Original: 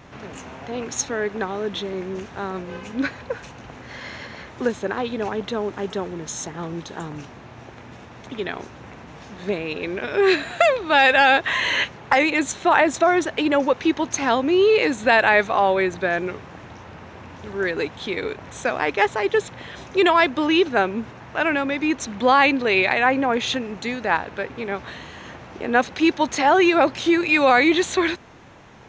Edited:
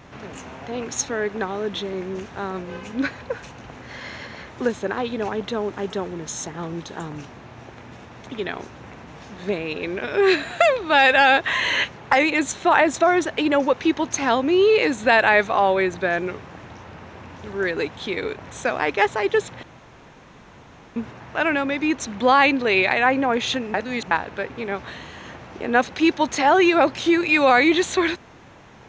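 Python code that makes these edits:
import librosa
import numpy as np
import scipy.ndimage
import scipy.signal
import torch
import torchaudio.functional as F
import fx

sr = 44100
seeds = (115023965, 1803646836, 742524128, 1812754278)

y = fx.edit(x, sr, fx.room_tone_fill(start_s=19.63, length_s=1.33),
    fx.reverse_span(start_s=23.74, length_s=0.37), tone=tone)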